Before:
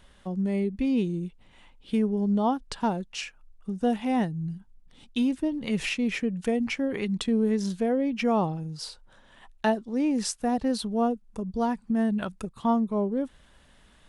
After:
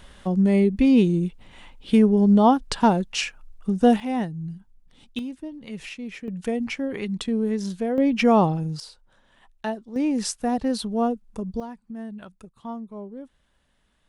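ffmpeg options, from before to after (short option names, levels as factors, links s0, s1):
-af "asetnsamples=n=441:p=0,asendcmd='4 volume volume -0.5dB;5.19 volume volume -8dB;6.28 volume volume 0dB;7.98 volume volume 7dB;8.8 volume volume -4.5dB;9.96 volume volume 2dB;11.6 volume volume -10.5dB',volume=2.66"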